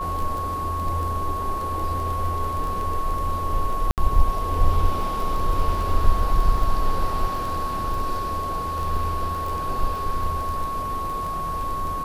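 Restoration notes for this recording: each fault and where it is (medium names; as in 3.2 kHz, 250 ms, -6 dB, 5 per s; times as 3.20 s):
crackle 13 per s -27 dBFS
whine 1.1 kHz -26 dBFS
3.91–3.98 s: dropout 68 ms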